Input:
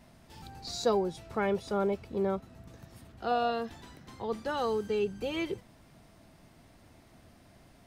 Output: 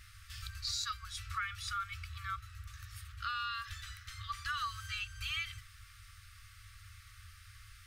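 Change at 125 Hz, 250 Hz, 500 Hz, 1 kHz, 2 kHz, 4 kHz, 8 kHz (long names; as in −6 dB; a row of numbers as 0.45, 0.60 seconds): −2.5 dB, below −40 dB, below −40 dB, −6.0 dB, +2.0 dB, +3.0 dB, can't be measured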